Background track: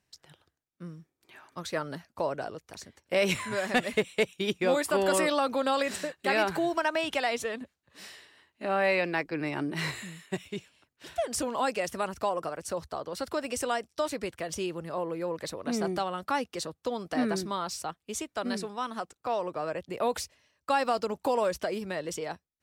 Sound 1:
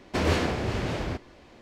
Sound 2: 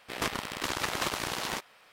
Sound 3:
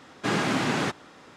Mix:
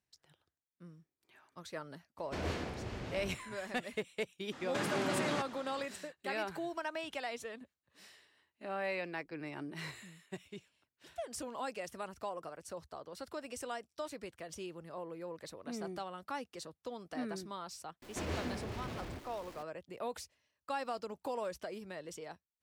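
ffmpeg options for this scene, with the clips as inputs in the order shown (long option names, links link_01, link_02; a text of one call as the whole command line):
ffmpeg -i bed.wav -i cue0.wav -i cue1.wav -i cue2.wav -filter_complex "[1:a]asplit=2[link_01][link_02];[0:a]volume=-11.5dB[link_03];[3:a]acompressor=threshold=-32dB:ratio=6:attack=3.2:release=140:knee=1:detection=peak[link_04];[link_02]aeval=exprs='val(0)+0.5*0.0178*sgn(val(0))':channel_layout=same[link_05];[link_01]atrim=end=1.61,asetpts=PTS-STARTPTS,volume=-13.5dB,afade=type=in:duration=0.004:curve=hsin,afade=type=out:start_time=1.606:duration=0.004:curve=hsin,adelay=2180[link_06];[link_04]atrim=end=1.36,asetpts=PTS-STARTPTS,volume=-1dB,afade=type=in:duration=0.02,afade=type=out:start_time=1.34:duration=0.02,adelay=4510[link_07];[link_05]atrim=end=1.61,asetpts=PTS-STARTPTS,volume=-15dB,afade=type=in:duration=0.004:curve=hsin,afade=type=out:start_time=1.606:duration=0.004:curve=hsin,adelay=18020[link_08];[link_03][link_06][link_07][link_08]amix=inputs=4:normalize=0" out.wav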